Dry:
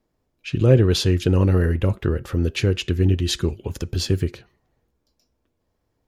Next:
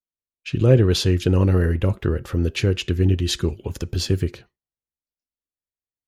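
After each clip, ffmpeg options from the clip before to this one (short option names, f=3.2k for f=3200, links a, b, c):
-af "agate=range=-33dB:threshold=-38dB:ratio=3:detection=peak"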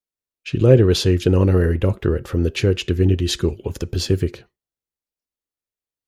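-af "equalizer=f=430:t=o:w=0.98:g=4,volume=1dB"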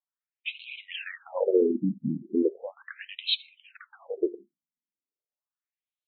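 -af "afftfilt=real='re*between(b*sr/1024,210*pow(3100/210,0.5+0.5*sin(2*PI*0.37*pts/sr))/1.41,210*pow(3100/210,0.5+0.5*sin(2*PI*0.37*pts/sr))*1.41)':imag='im*between(b*sr/1024,210*pow(3100/210,0.5+0.5*sin(2*PI*0.37*pts/sr))/1.41,210*pow(3100/210,0.5+0.5*sin(2*PI*0.37*pts/sr))*1.41)':win_size=1024:overlap=0.75"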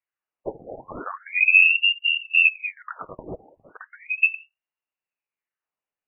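-af "lowpass=f=2.6k:t=q:w=0.5098,lowpass=f=2.6k:t=q:w=0.6013,lowpass=f=2.6k:t=q:w=0.9,lowpass=f=2.6k:t=q:w=2.563,afreqshift=-3000,volume=7dB"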